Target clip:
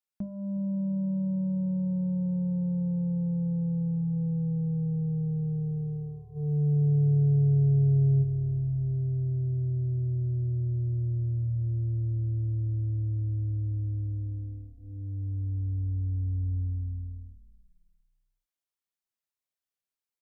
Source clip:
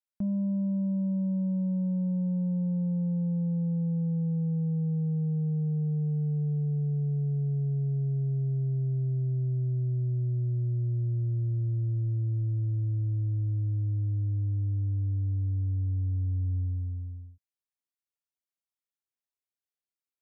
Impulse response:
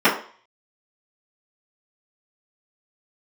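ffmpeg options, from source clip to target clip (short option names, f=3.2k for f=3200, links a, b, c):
-filter_complex "[0:a]bandreject=f=50:t=h:w=6,bandreject=f=100:t=h:w=6,bandreject=f=150:t=h:w=6,bandreject=f=200:t=h:w=6,bandreject=f=250:t=h:w=6,bandreject=f=300:t=h:w=6,bandreject=f=350:t=h:w=6,bandreject=f=400:t=h:w=6,bandreject=f=450:t=h:w=6,bandreject=f=500:t=h:w=6,asplit=3[a][b][c];[a]afade=t=out:st=6.35:d=0.02[d];[b]acontrast=74,afade=t=in:st=6.35:d=0.02,afade=t=out:st=8.22:d=0.02[e];[c]afade=t=in:st=8.22:d=0.02[f];[d][e][f]amix=inputs=3:normalize=0,asplit=4[g][h][i][j];[h]adelay=358,afreqshift=-40,volume=-18dB[k];[i]adelay=716,afreqshift=-80,volume=-26.4dB[l];[j]adelay=1074,afreqshift=-120,volume=-34.8dB[m];[g][k][l][m]amix=inputs=4:normalize=0"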